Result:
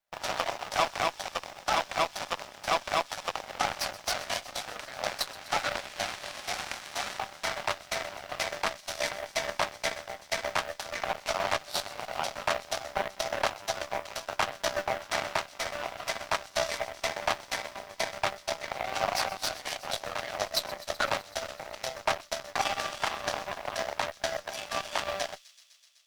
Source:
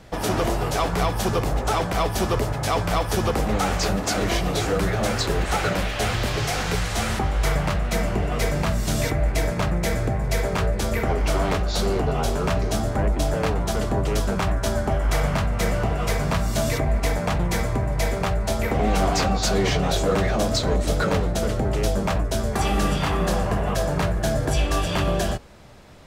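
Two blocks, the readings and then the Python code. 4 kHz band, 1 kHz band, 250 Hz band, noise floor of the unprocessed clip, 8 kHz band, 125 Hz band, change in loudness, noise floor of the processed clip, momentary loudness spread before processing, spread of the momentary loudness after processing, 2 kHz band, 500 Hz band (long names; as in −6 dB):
−3.5 dB, −5.5 dB, −22.0 dB, −27 dBFS, −6.5 dB, −27.0 dB, −9.0 dB, −53 dBFS, 3 LU, 6 LU, −4.0 dB, −10.0 dB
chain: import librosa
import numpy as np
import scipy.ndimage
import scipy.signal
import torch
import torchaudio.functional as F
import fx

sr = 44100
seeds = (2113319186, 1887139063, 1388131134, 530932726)

p1 = scipy.signal.sosfilt(scipy.signal.cheby1(5, 1.0, [570.0, 6000.0], 'bandpass', fs=sr, output='sos'), x)
p2 = fx.rider(p1, sr, range_db=10, speed_s=2.0)
p3 = fx.dmg_noise_colour(p2, sr, seeds[0], colour='white', level_db=-55.0)
p4 = fx.cheby_harmonics(p3, sr, harmonics=(4, 7), levels_db=(-24, -17), full_scale_db=-11.5)
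y = p4 + fx.echo_wet_highpass(p4, sr, ms=126, feedback_pct=80, hz=4200.0, wet_db=-15.5, dry=0)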